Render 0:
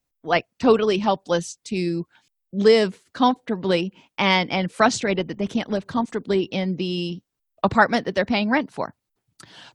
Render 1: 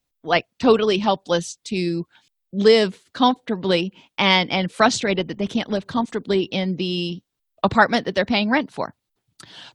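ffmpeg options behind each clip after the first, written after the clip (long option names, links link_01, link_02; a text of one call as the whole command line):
ffmpeg -i in.wav -af "equalizer=frequency=3600:width=1.9:gain=5,volume=1dB" out.wav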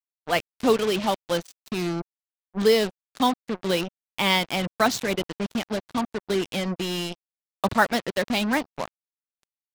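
ffmpeg -i in.wav -af "acrusher=bits=3:mix=0:aa=0.5,volume=-5dB" out.wav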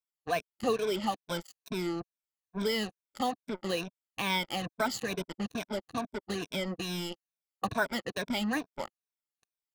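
ffmpeg -i in.wav -af "afftfilt=real='re*pow(10,14/40*sin(2*PI*(1.6*log(max(b,1)*sr/1024/100)/log(2)-(-2.3)*(pts-256)/sr)))':imag='im*pow(10,14/40*sin(2*PI*(1.6*log(max(b,1)*sr/1024/100)/log(2)-(-2.3)*(pts-256)/sr)))':win_size=1024:overlap=0.75,acompressor=threshold=-34dB:ratio=1.5,volume=-4.5dB" out.wav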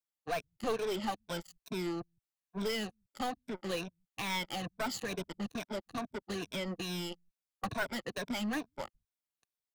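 ffmpeg -i in.wav -filter_complex "[0:a]acrossover=split=110[link_01][link_02];[link_01]aecho=1:1:164:0.141[link_03];[link_02]aeval=exprs='clip(val(0),-1,0.0299)':channel_layout=same[link_04];[link_03][link_04]amix=inputs=2:normalize=0,volume=-2.5dB" out.wav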